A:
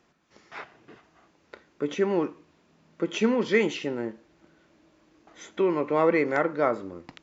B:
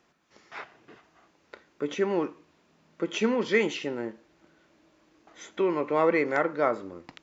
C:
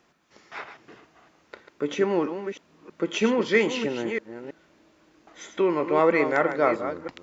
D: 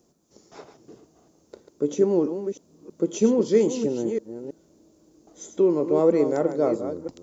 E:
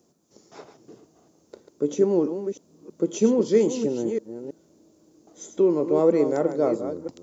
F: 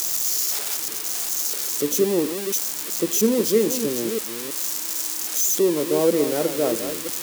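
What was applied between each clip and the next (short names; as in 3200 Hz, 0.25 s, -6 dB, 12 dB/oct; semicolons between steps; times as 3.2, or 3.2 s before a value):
low shelf 320 Hz -4.5 dB
reverse delay 0.322 s, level -9 dB; gain +3 dB
EQ curve 450 Hz 0 dB, 1900 Hz -23 dB, 2700 Hz -19 dB, 6700 Hz +3 dB; gain +3.5 dB
HPF 83 Hz
switching spikes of -14.5 dBFS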